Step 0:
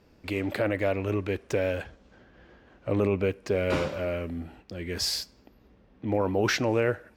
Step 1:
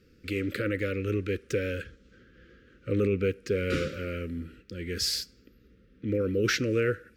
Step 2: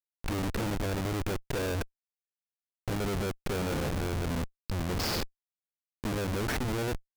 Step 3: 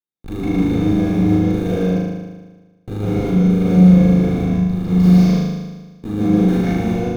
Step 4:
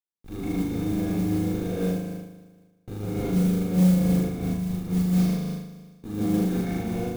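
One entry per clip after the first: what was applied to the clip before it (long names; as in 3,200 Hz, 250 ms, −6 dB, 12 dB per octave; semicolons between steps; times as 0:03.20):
elliptic band-stop filter 510–1,300 Hz, stop band 40 dB
brickwall limiter −25.5 dBFS, peak gain reduction 9.5 dB; speech leveller within 3 dB 0.5 s; comparator with hysteresis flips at −34.5 dBFS; level +6.5 dB
flutter between parallel walls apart 6.6 metres, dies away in 1.3 s; convolution reverb RT60 0.15 s, pre-delay 150 ms, DRR −4.5 dB; level −10 dB
soft clipping −3 dBFS, distortion −23 dB; noise that follows the level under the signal 22 dB; amplitude modulation by smooth noise, depth 55%; level −7 dB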